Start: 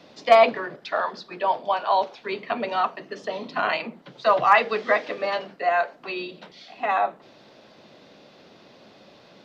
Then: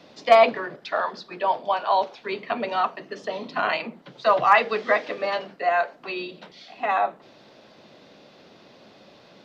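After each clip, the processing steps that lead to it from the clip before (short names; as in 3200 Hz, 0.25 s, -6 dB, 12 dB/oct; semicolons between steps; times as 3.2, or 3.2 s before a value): nothing audible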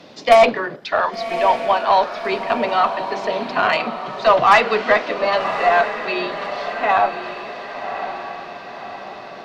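added harmonics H 4 -25 dB, 5 -19 dB, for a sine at -4 dBFS; diffused feedback echo 1.11 s, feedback 51%, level -9 dB; gain +3 dB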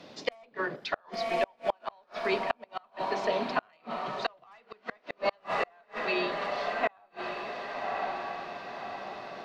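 flipped gate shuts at -9 dBFS, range -37 dB; gain -6.5 dB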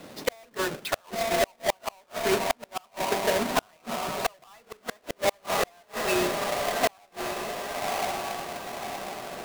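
half-waves squared off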